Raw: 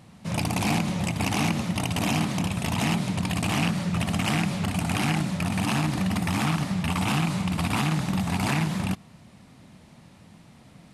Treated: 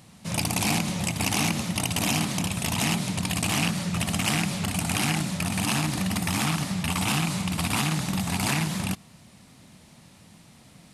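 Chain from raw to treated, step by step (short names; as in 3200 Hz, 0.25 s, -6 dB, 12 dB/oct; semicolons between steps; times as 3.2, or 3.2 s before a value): high shelf 3500 Hz +10.5 dB; gain -2 dB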